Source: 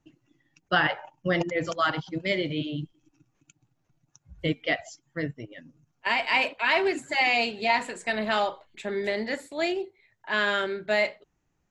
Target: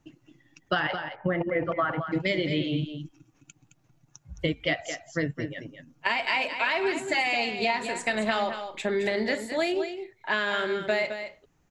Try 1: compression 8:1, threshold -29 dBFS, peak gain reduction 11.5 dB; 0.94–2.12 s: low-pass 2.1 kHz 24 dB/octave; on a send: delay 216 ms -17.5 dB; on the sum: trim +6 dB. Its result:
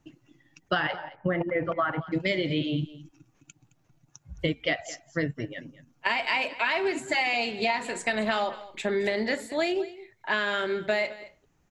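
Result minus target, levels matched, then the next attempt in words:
echo-to-direct -8.5 dB
compression 8:1, threshold -29 dBFS, peak gain reduction 11.5 dB; 0.94–2.12 s: low-pass 2.1 kHz 24 dB/octave; on a send: delay 216 ms -9 dB; on the sum: trim +6 dB

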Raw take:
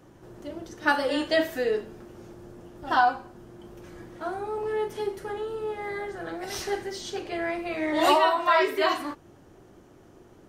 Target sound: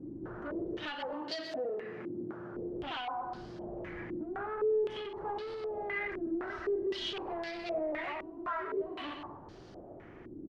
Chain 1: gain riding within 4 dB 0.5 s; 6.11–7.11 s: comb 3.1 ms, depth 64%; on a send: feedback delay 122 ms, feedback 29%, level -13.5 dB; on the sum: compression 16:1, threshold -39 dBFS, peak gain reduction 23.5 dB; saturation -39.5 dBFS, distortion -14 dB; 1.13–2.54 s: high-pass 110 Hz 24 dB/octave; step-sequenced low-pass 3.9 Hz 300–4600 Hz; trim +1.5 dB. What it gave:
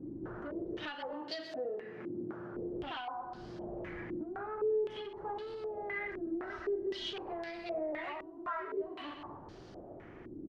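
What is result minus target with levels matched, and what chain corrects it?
compression: peak gain reduction +5.5 dB
gain riding within 4 dB 0.5 s; 6.11–7.11 s: comb 3.1 ms, depth 64%; on a send: feedback delay 122 ms, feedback 29%, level -13.5 dB; on the sum: compression 16:1, threshold -33 dBFS, peak gain reduction 18 dB; saturation -39.5 dBFS, distortion -9 dB; 1.13–2.54 s: high-pass 110 Hz 24 dB/octave; step-sequenced low-pass 3.9 Hz 300–4600 Hz; trim +1.5 dB

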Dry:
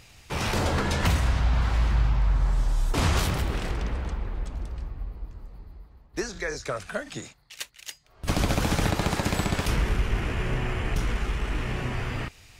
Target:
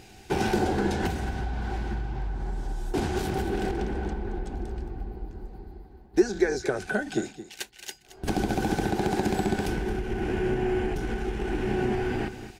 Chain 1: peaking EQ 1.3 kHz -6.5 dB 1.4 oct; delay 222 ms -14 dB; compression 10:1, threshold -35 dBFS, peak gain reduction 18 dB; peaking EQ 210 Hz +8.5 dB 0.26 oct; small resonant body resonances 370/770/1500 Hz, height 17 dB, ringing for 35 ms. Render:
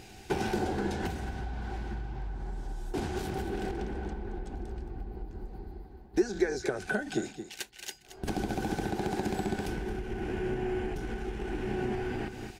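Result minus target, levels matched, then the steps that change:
compression: peak gain reduction +6 dB
change: compression 10:1, threshold -28.5 dBFS, peak gain reduction 12 dB

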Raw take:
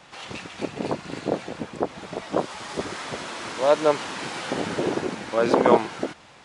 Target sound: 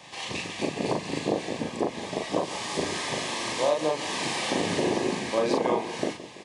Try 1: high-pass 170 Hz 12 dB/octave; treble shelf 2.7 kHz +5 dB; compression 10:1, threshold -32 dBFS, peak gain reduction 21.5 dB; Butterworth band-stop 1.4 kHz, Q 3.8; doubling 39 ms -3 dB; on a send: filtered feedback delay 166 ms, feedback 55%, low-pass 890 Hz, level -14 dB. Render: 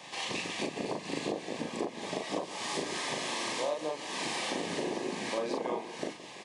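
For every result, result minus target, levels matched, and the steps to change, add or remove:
compression: peak gain reduction +8.5 dB; 125 Hz band -3.0 dB
change: compression 10:1, threshold -22 dBFS, peak gain reduction 12.5 dB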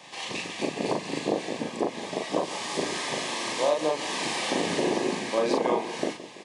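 125 Hz band -4.0 dB
change: high-pass 65 Hz 12 dB/octave

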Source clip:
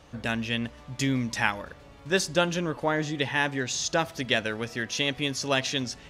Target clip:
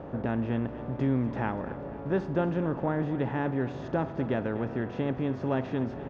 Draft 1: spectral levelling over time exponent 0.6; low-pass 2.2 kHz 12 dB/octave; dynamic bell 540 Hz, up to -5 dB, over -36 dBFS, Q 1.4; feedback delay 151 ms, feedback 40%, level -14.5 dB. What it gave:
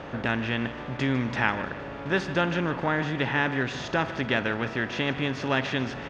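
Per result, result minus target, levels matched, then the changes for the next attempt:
2 kHz band +10.5 dB; echo 95 ms early
change: low-pass 730 Hz 12 dB/octave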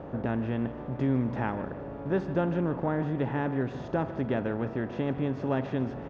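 echo 95 ms early
change: feedback delay 246 ms, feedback 40%, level -14.5 dB

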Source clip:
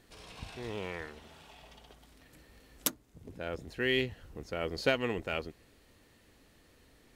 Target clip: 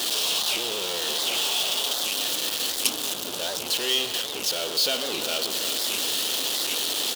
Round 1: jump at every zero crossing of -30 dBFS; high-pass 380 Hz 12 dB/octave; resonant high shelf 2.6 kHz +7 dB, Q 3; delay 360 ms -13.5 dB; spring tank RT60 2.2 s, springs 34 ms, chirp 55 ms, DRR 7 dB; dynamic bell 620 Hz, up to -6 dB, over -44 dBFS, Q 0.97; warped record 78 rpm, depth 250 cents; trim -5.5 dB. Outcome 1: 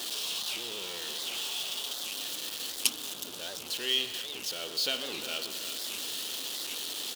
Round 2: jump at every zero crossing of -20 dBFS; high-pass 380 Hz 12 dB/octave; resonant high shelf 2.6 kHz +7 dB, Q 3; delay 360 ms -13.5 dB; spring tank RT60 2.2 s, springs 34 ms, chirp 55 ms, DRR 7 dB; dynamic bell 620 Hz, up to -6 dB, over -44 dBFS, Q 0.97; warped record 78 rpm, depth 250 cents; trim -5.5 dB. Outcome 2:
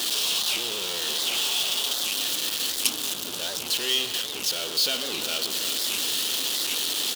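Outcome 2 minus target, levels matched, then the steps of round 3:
500 Hz band -4.5 dB
jump at every zero crossing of -20 dBFS; high-pass 380 Hz 12 dB/octave; resonant high shelf 2.6 kHz +7 dB, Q 3; delay 360 ms -13.5 dB; spring tank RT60 2.2 s, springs 34 ms, chirp 55 ms, DRR 7 dB; warped record 78 rpm, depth 250 cents; trim -5.5 dB

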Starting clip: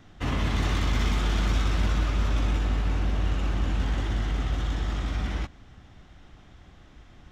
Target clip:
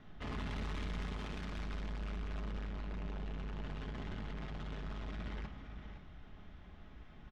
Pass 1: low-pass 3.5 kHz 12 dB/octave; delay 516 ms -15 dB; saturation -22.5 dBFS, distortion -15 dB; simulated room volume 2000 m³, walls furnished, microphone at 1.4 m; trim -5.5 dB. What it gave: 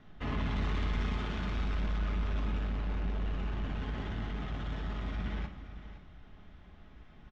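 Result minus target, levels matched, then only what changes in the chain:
saturation: distortion -8 dB
change: saturation -34 dBFS, distortion -6 dB

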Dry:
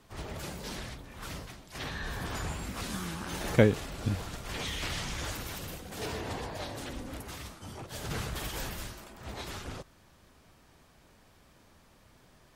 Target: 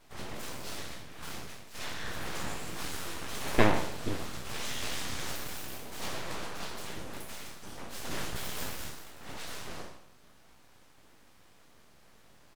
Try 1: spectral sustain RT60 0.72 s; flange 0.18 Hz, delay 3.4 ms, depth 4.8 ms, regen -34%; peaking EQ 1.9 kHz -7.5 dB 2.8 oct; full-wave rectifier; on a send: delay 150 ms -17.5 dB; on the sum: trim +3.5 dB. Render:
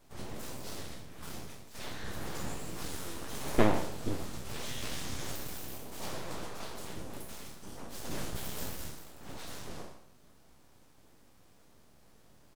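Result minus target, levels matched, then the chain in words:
2 kHz band -4.0 dB
spectral sustain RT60 0.72 s; flange 0.18 Hz, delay 3.4 ms, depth 4.8 ms, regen -34%; full-wave rectifier; on a send: delay 150 ms -17.5 dB; on the sum: trim +3.5 dB

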